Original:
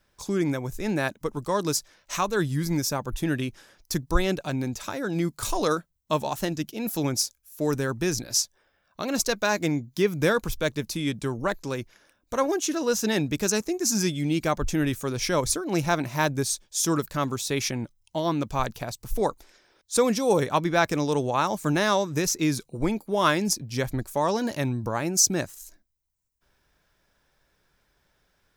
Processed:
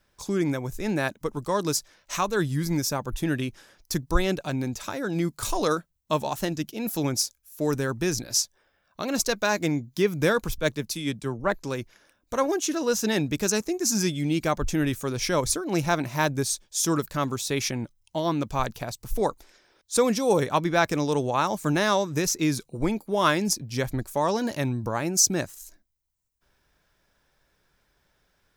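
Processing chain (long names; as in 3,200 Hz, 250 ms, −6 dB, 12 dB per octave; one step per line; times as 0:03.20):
0:10.58–0:11.63: multiband upward and downward expander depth 100%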